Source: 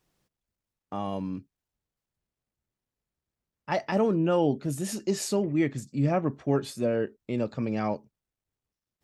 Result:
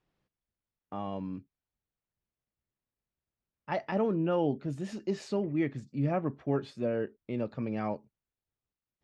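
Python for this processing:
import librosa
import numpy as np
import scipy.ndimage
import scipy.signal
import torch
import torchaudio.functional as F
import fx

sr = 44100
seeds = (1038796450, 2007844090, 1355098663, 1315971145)

y = scipy.signal.sosfilt(scipy.signal.butter(2, 3400.0, 'lowpass', fs=sr, output='sos'), x)
y = y * librosa.db_to_amplitude(-4.5)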